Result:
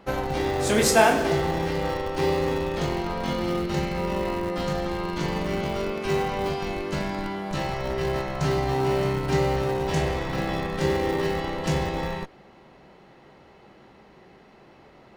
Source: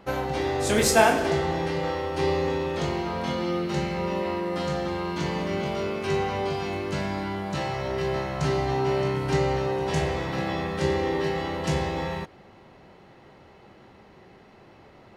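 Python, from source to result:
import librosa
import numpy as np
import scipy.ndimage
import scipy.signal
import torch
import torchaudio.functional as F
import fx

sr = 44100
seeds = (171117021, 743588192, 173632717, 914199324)

p1 = fx.peak_eq(x, sr, hz=96.0, db=-13.5, octaves=0.27)
p2 = fx.schmitt(p1, sr, flips_db=-22.5)
y = p1 + F.gain(torch.from_numpy(p2), -7.5).numpy()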